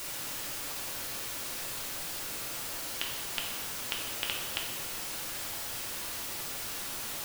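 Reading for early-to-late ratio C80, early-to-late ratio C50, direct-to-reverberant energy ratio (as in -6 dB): 4.5 dB, 3.0 dB, -2.0 dB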